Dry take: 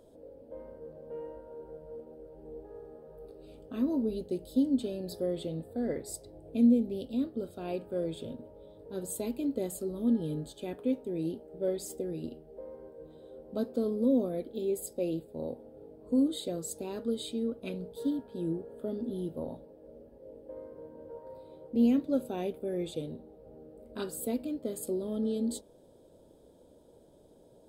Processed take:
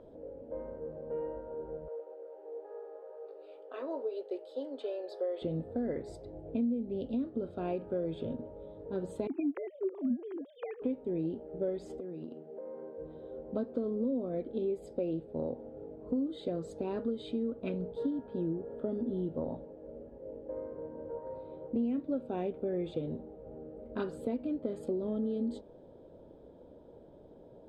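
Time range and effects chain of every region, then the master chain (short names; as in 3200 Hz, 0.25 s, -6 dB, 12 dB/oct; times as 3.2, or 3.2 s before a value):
1.88–5.42 inverse Chebyshev high-pass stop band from 220 Hz + upward compressor, threshold -56 dBFS
9.27–10.82 sine-wave speech + dynamic EQ 2100 Hz, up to +5 dB, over -58 dBFS, Q 1.5
11.99–12.98 HPF 160 Hz 24 dB/oct + compressor 4:1, threshold -44 dBFS
whole clip: LPF 2100 Hz 12 dB/oct; compressor 5:1, threshold -35 dBFS; gain +4.5 dB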